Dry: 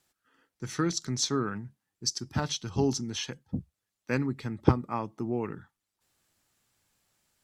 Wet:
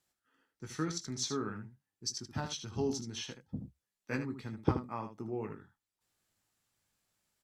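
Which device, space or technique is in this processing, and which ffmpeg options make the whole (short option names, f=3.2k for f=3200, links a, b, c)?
slapback doubling: -filter_complex "[0:a]asplit=3[a][b][c];[b]adelay=19,volume=-8dB[d];[c]adelay=77,volume=-9dB[e];[a][d][e]amix=inputs=3:normalize=0,asettb=1/sr,asplit=3[f][g][h];[f]atrim=end=3.594[i];[g]atrim=start=3.59:end=4.16,asetpts=PTS-STARTPTS,afade=t=in:d=0.004:c=qsin,afade=t=out:st=0.566:d=0.004:c=qsin,asplit=2[j][k];[k]adelay=15,volume=-2.5dB[l];[j][l]amix=inputs=2:normalize=0,atrim=end_sample=25137[m];[h]atrim=start=4.156[n];[i][m]acrossfade=d=0.004:c1=hsin:c2=qsin[o];[o][n]acrossfade=d=0.004:c1=qsin:c2=hsin,volume=-8dB"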